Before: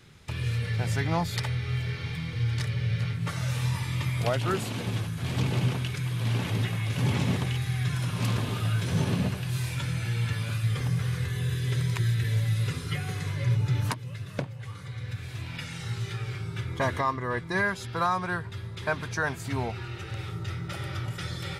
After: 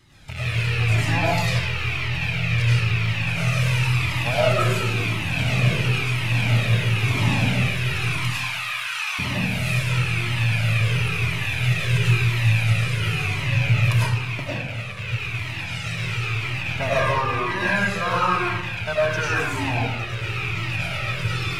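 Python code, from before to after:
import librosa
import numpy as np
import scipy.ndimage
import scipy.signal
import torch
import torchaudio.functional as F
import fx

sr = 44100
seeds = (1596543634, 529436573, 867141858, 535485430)

y = fx.rattle_buzz(x, sr, strikes_db=-34.0, level_db=-21.0)
y = fx.steep_highpass(y, sr, hz=860.0, slope=36, at=(8.11, 9.19))
y = fx.rev_freeverb(y, sr, rt60_s=1.1, hf_ratio=0.8, predelay_ms=60, drr_db=-8.0)
y = fx.comb_cascade(y, sr, direction='falling', hz=0.97)
y = y * 10.0 ** (2.5 / 20.0)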